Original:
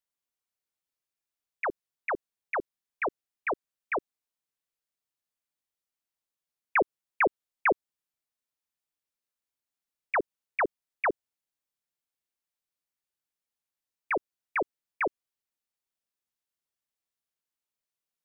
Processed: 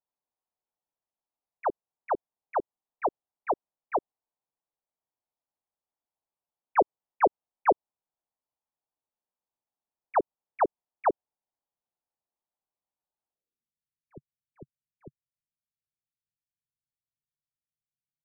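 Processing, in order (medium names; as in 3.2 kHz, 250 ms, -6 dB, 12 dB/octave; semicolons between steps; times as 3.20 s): low-pass sweep 850 Hz -> 140 Hz, 13.28–13.79 s; trim -1 dB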